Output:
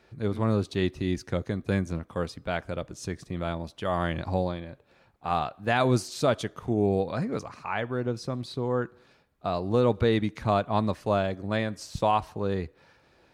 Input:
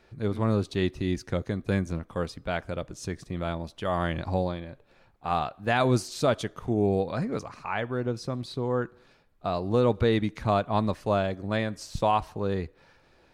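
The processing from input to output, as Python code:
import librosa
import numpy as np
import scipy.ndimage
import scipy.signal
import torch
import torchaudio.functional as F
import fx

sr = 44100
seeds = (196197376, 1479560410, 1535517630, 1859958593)

y = scipy.signal.sosfilt(scipy.signal.butter(2, 52.0, 'highpass', fs=sr, output='sos'), x)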